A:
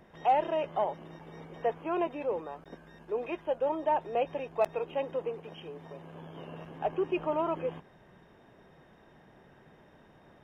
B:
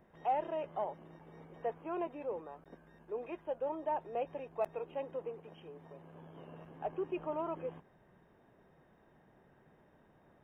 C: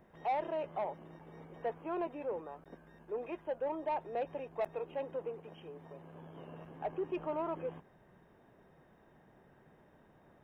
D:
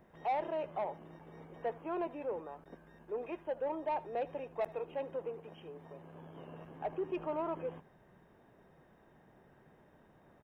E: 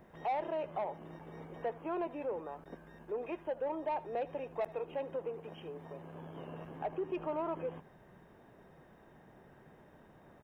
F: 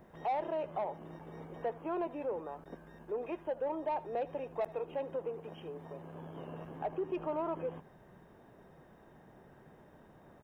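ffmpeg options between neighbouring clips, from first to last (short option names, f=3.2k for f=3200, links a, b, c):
-af "equalizer=f=4.6k:w=0.79:g=-8.5,volume=-7dB"
-af "asoftclip=type=tanh:threshold=-29.5dB,volume=2dB"
-af "aecho=1:1:76:0.0944"
-af "acompressor=threshold=-44dB:ratio=1.5,volume=4dB"
-af "equalizer=f=2.3k:w=1.3:g=-3,volume=1dB"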